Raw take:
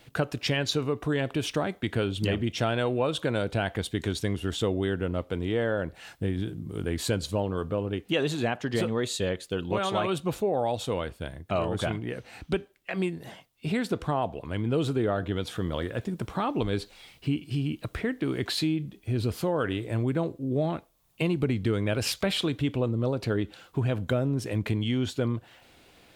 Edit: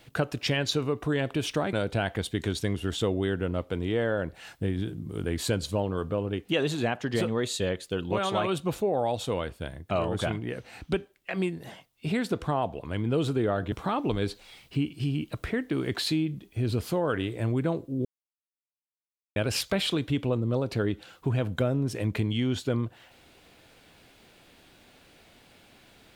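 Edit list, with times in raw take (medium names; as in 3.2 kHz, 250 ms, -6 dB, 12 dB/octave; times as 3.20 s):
1.73–3.33 s: delete
15.32–16.23 s: delete
20.56–21.87 s: mute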